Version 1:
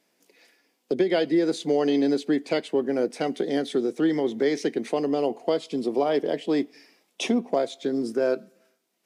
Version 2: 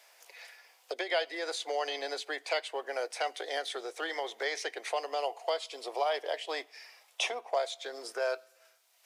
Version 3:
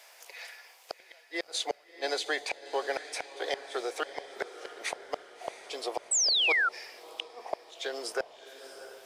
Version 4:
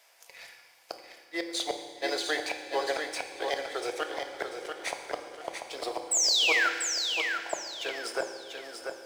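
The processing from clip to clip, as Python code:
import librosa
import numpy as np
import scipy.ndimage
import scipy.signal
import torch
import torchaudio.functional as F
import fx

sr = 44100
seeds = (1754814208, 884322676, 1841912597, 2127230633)

y1 = scipy.signal.sosfilt(scipy.signal.cheby2(4, 60, 190.0, 'highpass', fs=sr, output='sos'), x)
y1 = fx.band_squash(y1, sr, depth_pct=40)
y2 = fx.gate_flip(y1, sr, shuts_db=-24.0, range_db=-39)
y2 = fx.echo_diffused(y2, sr, ms=684, feedback_pct=50, wet_db=-12.0)
y2 = fx.spec_paint(y2, sr, seeds[0], shape='fall', start_s=6.11, length_s=0.58, low_hz=1300.0, high_hz=8300.0, level_db=-31.0)
y2 = y2 * librosa.db_to_amplitude(5.5)
y3 = fx.law_mismatch(y2, sr, coded='A')
y3 = fx.echo_feedback(y3, sr, ms=690, feedback_pct=31, wet_db=-6.0)
y3 = fx.rev_fdn(y3, sr, rt60_s=1.4, lf_ratio=1.35, hf_ratio=1.0, size_ms=18.0, drr_db=5.5)
y3 = y3 * librosa.db_to_amplitude(1.0)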